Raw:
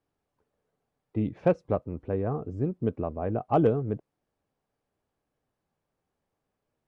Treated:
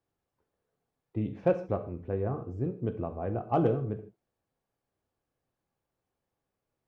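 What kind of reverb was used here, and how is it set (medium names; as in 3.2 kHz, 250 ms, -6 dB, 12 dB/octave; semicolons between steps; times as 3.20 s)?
gated-style reverb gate 180 ms falling, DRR 6 dB; trim -4 dB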